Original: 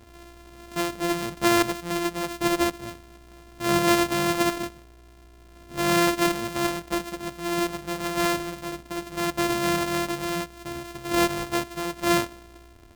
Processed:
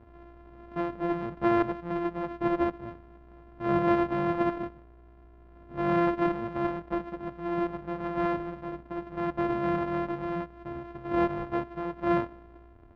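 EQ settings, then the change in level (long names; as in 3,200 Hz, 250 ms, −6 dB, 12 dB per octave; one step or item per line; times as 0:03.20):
low-pass filter 1,400 Hz 12 dB per octave
high-frequency loss of the air 72 metres
−2.5 dB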